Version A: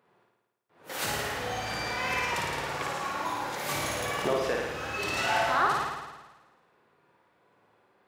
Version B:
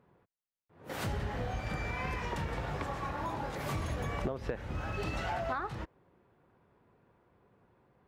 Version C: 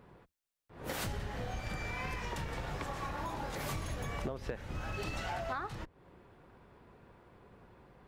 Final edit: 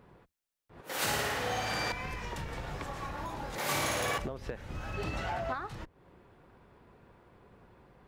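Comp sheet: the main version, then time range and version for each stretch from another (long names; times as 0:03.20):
C
0:00.81–0:01.92: punch in from A
0:03.58–0:04.18: punch in from A
0:04.94–0:05.54: punch in from B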